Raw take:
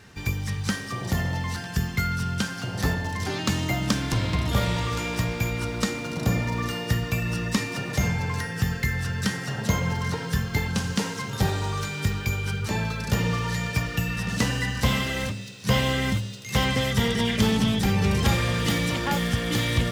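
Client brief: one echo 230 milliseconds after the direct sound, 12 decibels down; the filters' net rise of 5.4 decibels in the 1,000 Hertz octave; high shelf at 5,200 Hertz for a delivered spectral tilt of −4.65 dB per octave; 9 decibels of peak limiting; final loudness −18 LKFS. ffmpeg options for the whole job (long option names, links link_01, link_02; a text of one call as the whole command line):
ffmpeg -i in.wav -af "equalizer=frequency=1000:width_type=o:gain=7,highshelf=frequency=5200:gain=-6.5,alimiter=limit=-18.5dB:level=0:latency=1,aecho=1:1:230:0.251,volume=9.5dB" out.wav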